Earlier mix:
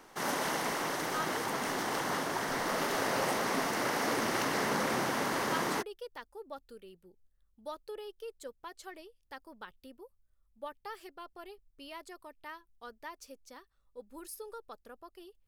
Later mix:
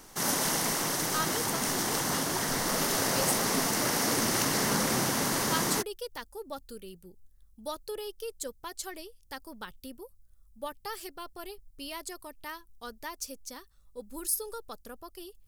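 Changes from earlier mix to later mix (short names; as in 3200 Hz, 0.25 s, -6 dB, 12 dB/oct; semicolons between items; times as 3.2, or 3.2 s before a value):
speech +4.0 dB; master: add tone controls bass +9 dB, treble +13 dB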